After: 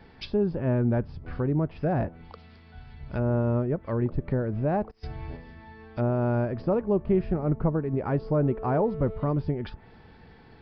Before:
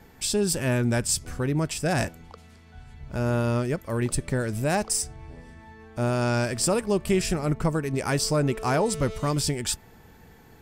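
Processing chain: 4.91–5.37 negative-ratio compressor -35 dBFS, ratio -0.5; treble ducked by the level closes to 900 Hz, closed at -23.5 dBFS; downsampling 11025 Hz

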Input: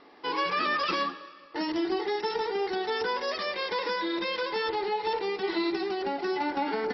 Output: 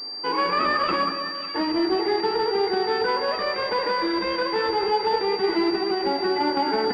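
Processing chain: split-band echo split 1600 Hz, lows 0.188 s, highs 0.549 s, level -9 dB; pulse-width modulation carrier 4700 Hz; gain +6 dB

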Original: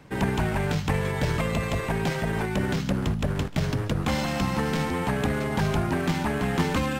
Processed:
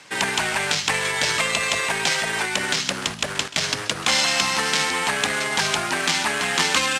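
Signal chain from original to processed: weighting filter ITU-R 468; echo 0.131 s -20 dB; gain +5.5 dB

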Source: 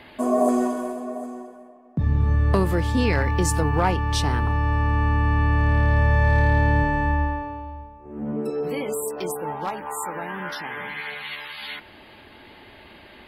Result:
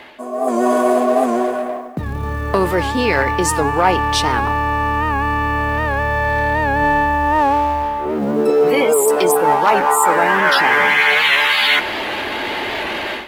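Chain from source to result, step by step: G.711 law mismatch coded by mu; reverse; compressor 6:1, threshold -30 dBFS, peak gain reduction 14.5 dB; reverse; tone controls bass -13 dB, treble -4 dB; AGC gain up to 16 dB; on a send at -22 dB: reverb, pre-delay 4 ms; on the sum: record warp 78 rpm, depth 100 cents; gain +5 dB

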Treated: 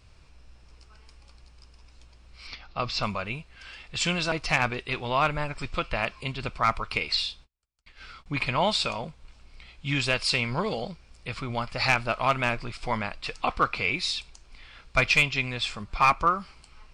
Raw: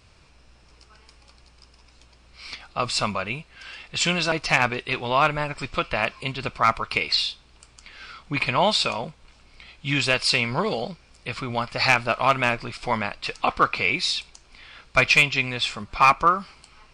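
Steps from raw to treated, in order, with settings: 2.47–3.03 steep low-pass 5900 Hz 36 dB/oct; 7.14–8.26 gate -44 dBFS, range -40 dB; low shelf 80 Hz +11 dB; gain -4.5 dB

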